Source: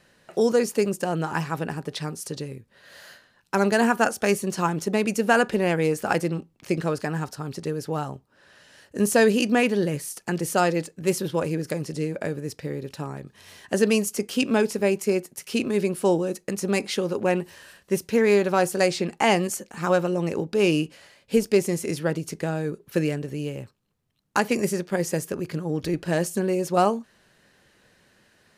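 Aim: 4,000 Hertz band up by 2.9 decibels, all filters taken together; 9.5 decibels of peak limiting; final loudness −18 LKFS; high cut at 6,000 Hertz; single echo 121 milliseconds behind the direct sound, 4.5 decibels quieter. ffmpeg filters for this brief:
ffmpeg -i in.wav -af "lowpass=6000,equalizer=frequency=4000:width_type=o:gain=5,alimiter=limit=-15.5dB:level=0:latency=1,aecho=1:1:121:0.596,volume=8.5dB" out.wav

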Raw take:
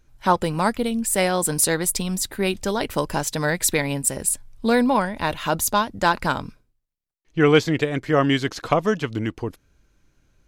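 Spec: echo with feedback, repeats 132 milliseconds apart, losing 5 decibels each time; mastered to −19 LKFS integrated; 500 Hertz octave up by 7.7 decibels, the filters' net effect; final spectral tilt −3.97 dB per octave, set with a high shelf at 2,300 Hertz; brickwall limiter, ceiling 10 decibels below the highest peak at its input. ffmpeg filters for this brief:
ffmpeg -i in.wav -af "equalizer=frequency=500:width_type=o:gain=8.5,highshelf=frequency=2300:gain=7.5,alimiter=limit=-8.5dB:level=0:latency=1,aecho=1:1:132|264|396|528|660|792|924:0.562|0.315|0.176|0.0988|0.0553|0.031|0.0173,volume=-0.5dB" out.wav

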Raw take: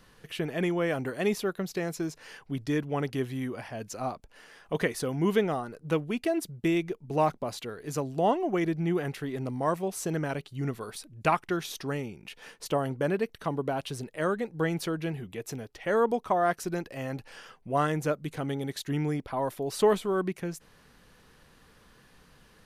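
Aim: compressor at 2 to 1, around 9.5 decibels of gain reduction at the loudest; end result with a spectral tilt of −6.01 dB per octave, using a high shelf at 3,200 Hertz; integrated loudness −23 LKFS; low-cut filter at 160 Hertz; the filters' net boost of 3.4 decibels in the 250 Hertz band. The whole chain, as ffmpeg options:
ffmpeg -i in.wav -af "highpass=160,equalizer=frequency=250:width_type=o:gain=6,highshelf=frequency=3200:gain=-6.5,acompressor=threshold=-34dB:ratio=2,volume=12.5dB" out.wav

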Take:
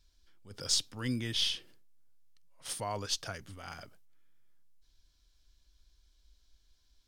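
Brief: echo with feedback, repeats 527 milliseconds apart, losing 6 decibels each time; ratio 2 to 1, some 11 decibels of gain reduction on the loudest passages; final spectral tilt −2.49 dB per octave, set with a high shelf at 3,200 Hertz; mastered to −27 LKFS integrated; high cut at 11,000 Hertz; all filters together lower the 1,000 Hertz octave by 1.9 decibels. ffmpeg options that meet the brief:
ffmpeg -i in.wav -af "lowpass=11000,equalizer=frequency=1000:width_type=o:gain=-3,highshelf=frequency=3200:gain=3.5,acompressor=threshold=-43dB:ratio=2,aecho=1:1:527|1054|1581|2108|2635|3162:0.501|0.251|0.125|0.0626|0.0313|0.0157,volume=14.5dB" out.wav

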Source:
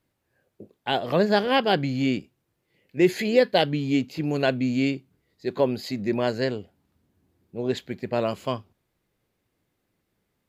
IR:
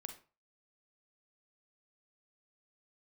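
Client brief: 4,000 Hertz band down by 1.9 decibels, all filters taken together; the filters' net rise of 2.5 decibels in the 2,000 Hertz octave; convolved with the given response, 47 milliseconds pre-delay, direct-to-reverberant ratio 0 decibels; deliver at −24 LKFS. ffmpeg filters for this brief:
-filter_complex "[0:a]equalizer=frequency=2000:width_type=o:gain=4.5,equalizer=frequency=4000:width_type=o:gain=-5,asplit=2[link_01][link_02];[1:a]atrim=start_sample=2205,adelay=47[link_03];[link_02][link_03]afir=irnorm=-1:irlink=0,volume=4dB[link_04];[link_01][link_04]amix=inputs=2:normalize=0,volume=-2.5dB"

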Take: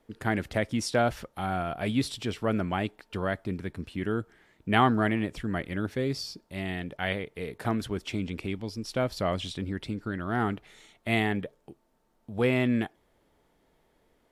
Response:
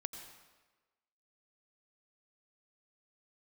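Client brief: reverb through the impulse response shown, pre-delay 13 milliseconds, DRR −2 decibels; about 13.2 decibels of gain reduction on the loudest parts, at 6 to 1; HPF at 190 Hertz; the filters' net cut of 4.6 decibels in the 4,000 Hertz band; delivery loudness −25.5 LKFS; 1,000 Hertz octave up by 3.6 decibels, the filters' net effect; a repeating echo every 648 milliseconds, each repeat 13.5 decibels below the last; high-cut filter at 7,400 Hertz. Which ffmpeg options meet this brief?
-filter_complex "[0:a]highpass=190,lowpass=7400,equalizer=frequency=1000:width_type=o:gain=5.5,equalizer=frequency=4000:width_type=o:gain=-6.5,acompressor=threshold=-28dB:ratio=6,aecho=1:1:648|1296:0.211|0.0444,asplit=2[link_01][link_02];[1:a]atrim=start_sample=2205,adelay=13[link_03];[link_02][link_03]afir=irnorm=-1:irlink=0,volume=3.5dB[link_04];[link_01][link_04]amix=inputs=2:normalize=0,volume=6dB"

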